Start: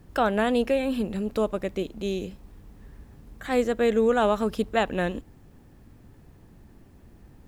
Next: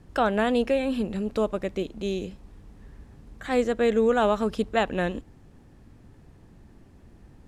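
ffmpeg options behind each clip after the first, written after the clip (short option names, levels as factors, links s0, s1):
-af "lowpass=9600"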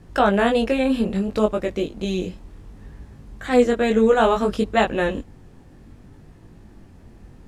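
-af "flanger=delay=18.5:depth=4.5:speed=0.62,volume=2.66"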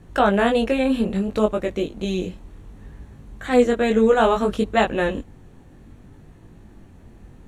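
-af "bandreject=f=5000:w=5.3"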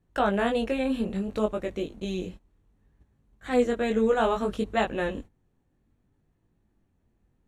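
-af "agate=range=0.141:threshold=0.02:ratio=16:detection=peak,volume=0.447"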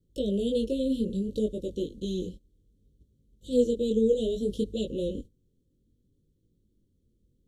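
-af "asuperstop=centerf=1300:order=20:qfactor=0.52"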